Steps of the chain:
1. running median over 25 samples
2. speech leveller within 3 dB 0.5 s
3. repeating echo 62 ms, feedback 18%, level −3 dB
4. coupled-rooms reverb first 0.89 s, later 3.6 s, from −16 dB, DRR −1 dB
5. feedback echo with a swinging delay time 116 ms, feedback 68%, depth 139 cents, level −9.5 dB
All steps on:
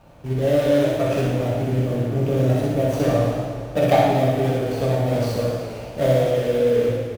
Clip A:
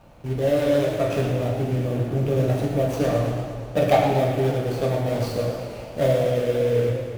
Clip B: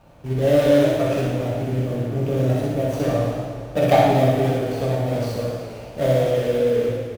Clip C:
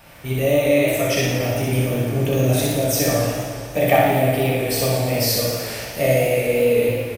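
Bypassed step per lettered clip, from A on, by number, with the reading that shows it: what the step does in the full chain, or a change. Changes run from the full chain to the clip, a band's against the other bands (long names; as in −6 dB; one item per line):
3, change in integrated loudness −2.0 LU
2, change in momentary loudness spread +4 LU
1, 8 kHz band +14.0 dB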